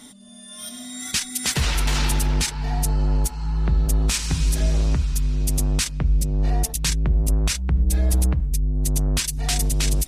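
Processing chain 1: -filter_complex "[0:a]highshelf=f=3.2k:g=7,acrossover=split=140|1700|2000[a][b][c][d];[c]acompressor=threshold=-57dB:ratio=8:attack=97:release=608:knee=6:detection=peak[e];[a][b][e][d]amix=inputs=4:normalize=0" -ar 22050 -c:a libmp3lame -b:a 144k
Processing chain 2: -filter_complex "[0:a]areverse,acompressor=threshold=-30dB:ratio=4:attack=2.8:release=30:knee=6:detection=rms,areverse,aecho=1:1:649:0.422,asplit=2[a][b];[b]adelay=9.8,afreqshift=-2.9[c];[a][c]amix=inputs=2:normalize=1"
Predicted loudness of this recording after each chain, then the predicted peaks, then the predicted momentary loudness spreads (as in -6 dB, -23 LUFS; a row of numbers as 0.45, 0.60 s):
-21.5, -35.0 LUFS; -5.5, -21.0 dBFS; 5, 4 LU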